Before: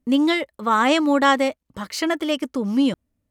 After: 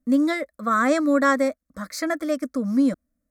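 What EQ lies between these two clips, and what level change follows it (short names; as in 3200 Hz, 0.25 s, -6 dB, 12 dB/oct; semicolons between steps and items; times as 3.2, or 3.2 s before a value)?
fixed phaser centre 590 Hz, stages 8; 0.0 dB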